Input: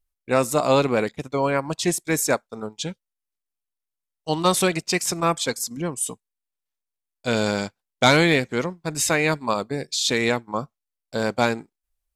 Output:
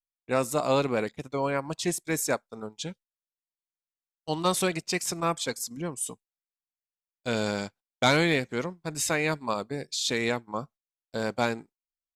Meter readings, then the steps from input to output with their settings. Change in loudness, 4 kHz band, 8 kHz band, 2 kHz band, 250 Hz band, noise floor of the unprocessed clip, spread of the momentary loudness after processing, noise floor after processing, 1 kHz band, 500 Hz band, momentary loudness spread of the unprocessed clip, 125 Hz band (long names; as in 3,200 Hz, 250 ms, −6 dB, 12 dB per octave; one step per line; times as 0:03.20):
−6.0 dB, −6.0 dB, −6.0 dB, −6.0 dB, −6.0 dB, −85 dBFS, 12 LU, below −85 dBFS, −6.0 dB, −6.0 dB, 12 LU, −6.0 dB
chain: noise gate −44 dBFS, range −22 dB
level −6 dB